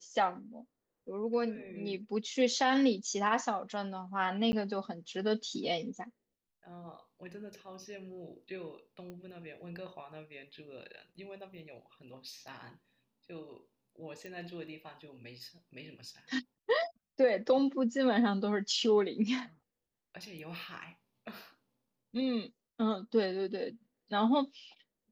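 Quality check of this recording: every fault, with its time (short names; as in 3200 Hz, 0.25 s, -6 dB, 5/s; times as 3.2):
4.52–4.53 gap 10 ms
9.1 pop -33 dBFS
14.26 pop -32 dBFS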